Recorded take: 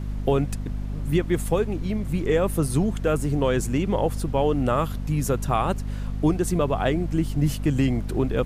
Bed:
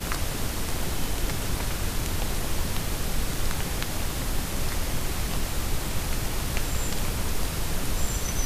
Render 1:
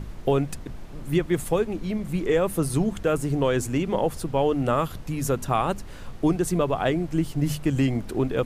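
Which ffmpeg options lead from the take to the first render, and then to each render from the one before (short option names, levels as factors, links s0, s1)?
-af "bandreject=f=50:t=h:w=6,bandreject=f=100:t=h:w=6,bandreject=f=150:t=h:w=6,bandreject=f=200:t=h:w=6,bandreject=f=250:t=h:w=6"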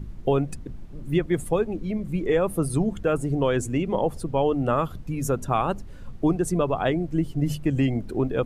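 -af "afftdn=nr=11:nf=-38"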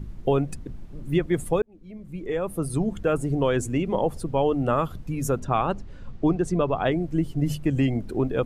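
-filter_complex "[0:a]asplit=3[s0][s1][s2];[s0]afade=t=out:st=5.39:d=0.02[s3];[s1]lowpass=5800,afade=t=in:st=5.39:d=0.02,afade=t=out:st=6.9:d=0.02[s4];[s2]afade=t=in:st=6.9:d=0.02[s5];[s3][s4][s5]amix=inputs=3:normalize=0,asplit=2[s6][s7];[s6]atrim=end=1.62,asetpts=PTS-STARTPTS,afade=t=out:st=1.616:d=0.004:c=hsin[s8];[s7]atrim=start=1.62,asetpts=PTS-STARTPTS,afade=t=in:d=1.42[s9];[s8][s9]concat=n=2:v=0:a=1"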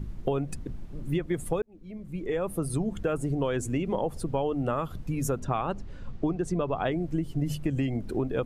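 -af "acompressor=threshold=0.0562:ratio=4"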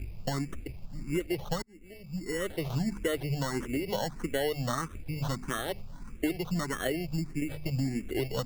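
-filter_complex "[0:a]acrusher=samples=18:mix=1:aa=0.000001,asplit=2[s0][s1];[s1]afreqshift=1.6[s2];[s0][s2]amix=inputs=2:normalize=1"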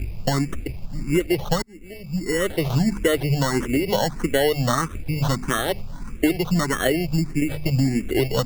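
-af "volume=3.35"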